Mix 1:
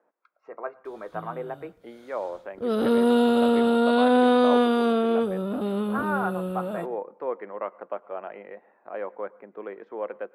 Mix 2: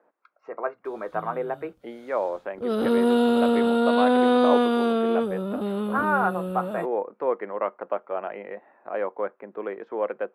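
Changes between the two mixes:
speech +5.5 dB; reverb: off

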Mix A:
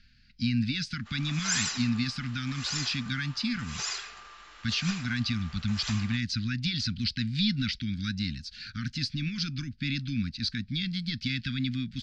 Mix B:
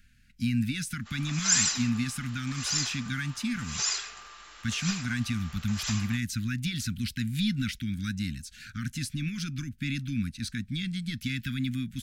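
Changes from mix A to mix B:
speech: remove synth low-pass 4700 Hz, resonance Q 5.7; master: remove air absorption 91 m

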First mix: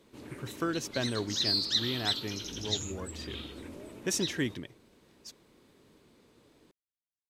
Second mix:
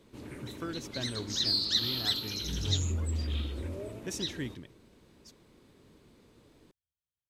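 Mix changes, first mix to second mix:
speech -8.0 dB; second sound +8.5 dB; master: add low shelf 130 Hz +9.5 dB

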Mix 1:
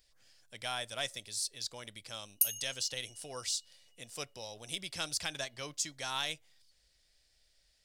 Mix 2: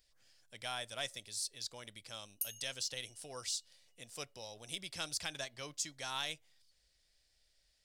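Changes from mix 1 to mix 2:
speech -3.5 dB; background -10.5 dB

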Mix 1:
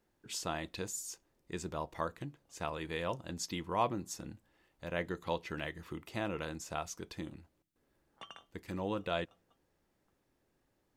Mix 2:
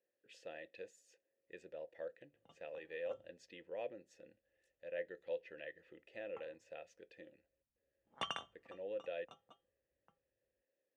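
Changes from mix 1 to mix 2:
speech: add vowel filter e; background +9.5 dB

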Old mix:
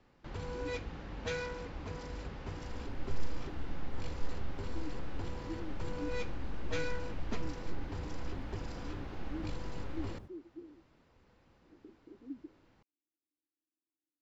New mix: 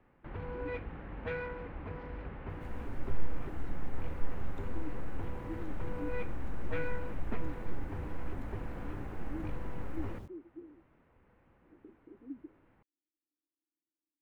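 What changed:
first sound: add LPF 2300 Hz 24 dB/oct; second sound +4.0 dB; master: add high shelf 4500 Hz +6.5 dB

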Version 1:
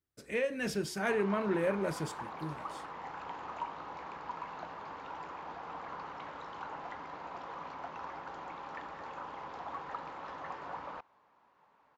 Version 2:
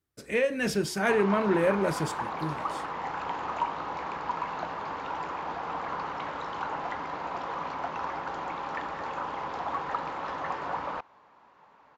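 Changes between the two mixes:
speech +6.5 dB; background +9.5 dB

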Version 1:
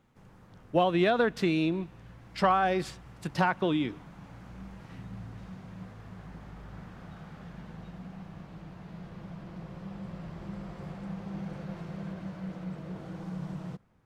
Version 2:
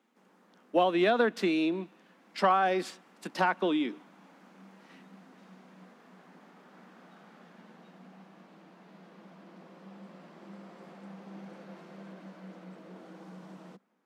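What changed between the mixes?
background -4.0 dB; master: add steep high-pass 200 Hz 48 dB/oct

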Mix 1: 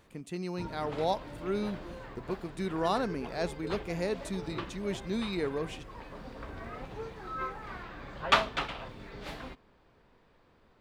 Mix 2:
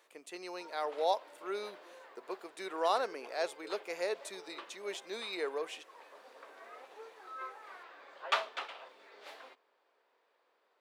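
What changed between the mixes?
background -7.0 dB; master: add HPF 440 Hz 24 dB/oct

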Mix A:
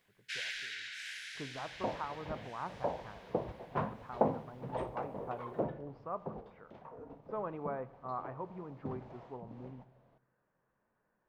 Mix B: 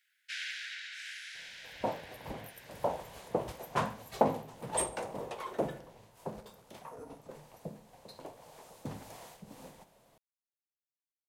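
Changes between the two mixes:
speech: muted; second sound: remove tape spacing loss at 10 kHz 44 dB

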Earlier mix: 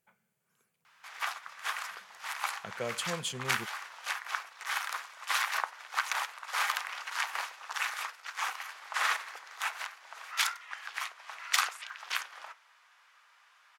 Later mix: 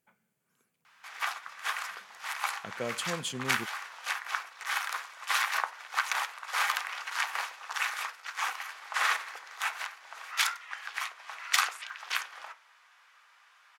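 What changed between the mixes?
speech: add bell 280 Hz +12 dB 0.38 oct; background: send +6.0 dB

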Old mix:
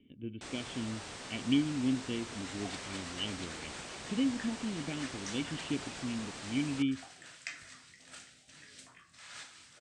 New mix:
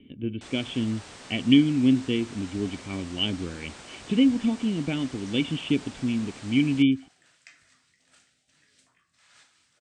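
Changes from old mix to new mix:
speech +11.0 dB; second sound -9.5 dB

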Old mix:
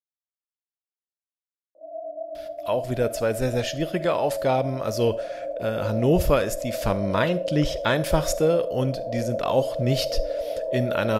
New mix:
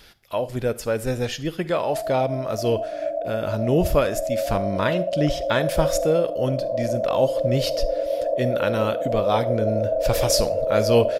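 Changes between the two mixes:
speech: entry -2.35 s; background +5.5 dB

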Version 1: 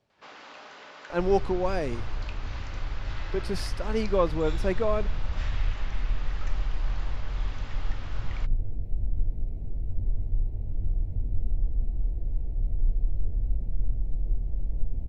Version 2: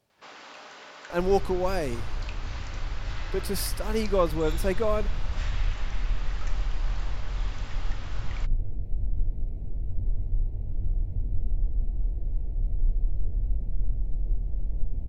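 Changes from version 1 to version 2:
speech: remove air absorption 88 m; first sound: remove air absorption 75 m

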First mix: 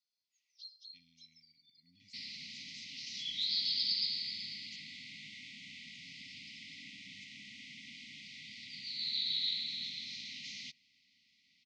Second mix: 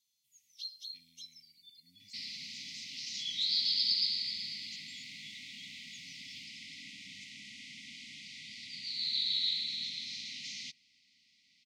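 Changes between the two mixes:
first sound: remove band-pass 4800 Hz, Q 5.1; master: remove air absorption 87 m

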